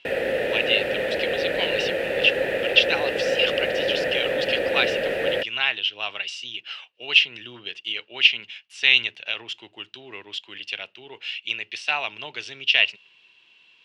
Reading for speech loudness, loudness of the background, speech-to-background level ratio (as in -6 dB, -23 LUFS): -23.5 LUFS, -25.0 LUFS, 1.5 dB